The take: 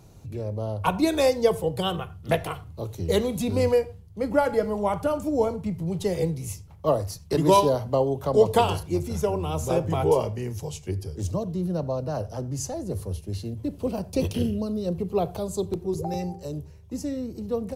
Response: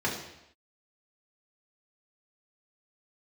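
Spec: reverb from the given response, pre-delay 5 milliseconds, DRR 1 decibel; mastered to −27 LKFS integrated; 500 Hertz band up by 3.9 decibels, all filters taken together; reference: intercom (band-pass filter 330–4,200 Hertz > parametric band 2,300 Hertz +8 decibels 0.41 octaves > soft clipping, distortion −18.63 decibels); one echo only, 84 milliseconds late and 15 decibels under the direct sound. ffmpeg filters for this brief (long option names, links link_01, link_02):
-filter_complex "[0:a]equalizer=frequency=500:width_type=o:gain=5.5,aecho=1:1:84:0.178,asplit=2[link_01][link_02];[1:a]atrim=start_sample=2205,adelay=5[link_03];[link_02][link_03]afir=irnorm=-1:irlink=0,volume=-11dB[link_04];[link_01][link_04]amix=inputs=2:normalize=0,highpass=330,lowpass=4200,equalizer=frequency=2300:width_type=o:width=0.41:gain=8,asoftclip=threshold=-7dB,volume=-5.5dB"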